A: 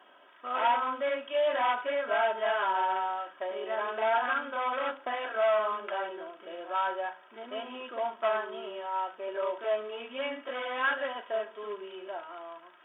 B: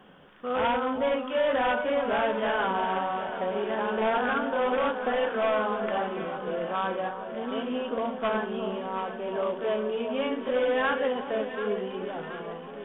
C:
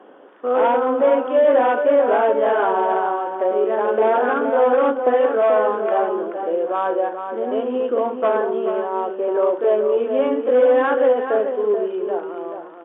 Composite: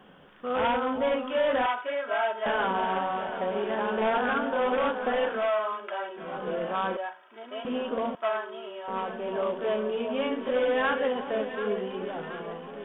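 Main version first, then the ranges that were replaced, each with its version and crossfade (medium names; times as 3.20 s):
B
1.66–2.46 s: from A
5.42–6.25 s: from A, crossfade 0.24 s
6.97–7.65 s: from A
8.15–8.88 s: from A
not used: C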